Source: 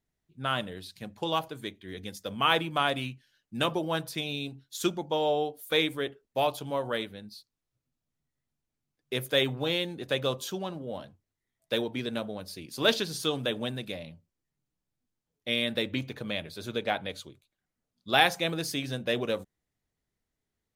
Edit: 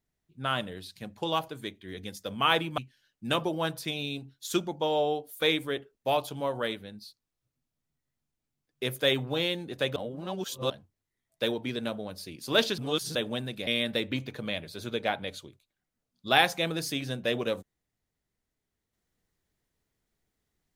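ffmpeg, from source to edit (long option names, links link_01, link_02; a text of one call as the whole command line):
ffmpeg -i in.wav -filter_complex "[0:a]asplit=7[link_01][link_02][link_03][link_04][link_05][link_06][link_07];[link_01]atrim=end=2.782[link_08];[link_02]atrim=start=3.078:end=10.262[link_09];[link_03]atrim=start=10.258:end=11.002,asetpts=PTS-STARTPTS,areverse[link_10];[link_04]atrim=start=10.998:end=13.082[link_11];[link_05]atrim=start=13.078:end=13.452,asetpts=PTS-STARTPTS,areverse[link_12];[link_06]atrim=start=13.448:end=13.972[link_13];[link_07]atrim=start=15.488[link_14];[link_08][link_09]acrossfade=duration=0.004:curve1=hsin:curve2=hsin[link_15];[link_15][link_10]acrossfade=duration=0.004:curve1=hsin:curve2=hsin[link_16];[link_16][link_11]acrossfade=duration=0.004:curve1=hsin:curve2=hsin[link_17];[link_17][link_12]acrossfade=duration=0.004:curve1=hsin:curve2=hsin[link_18];[link_18][link_13]acrossfade=duration=0.004:curve1=hsin:curve2=hsin[link_19];[link_19][link_14]acrossfade=duration=0.004:curve1=hsin:curve2=hsin" out.wav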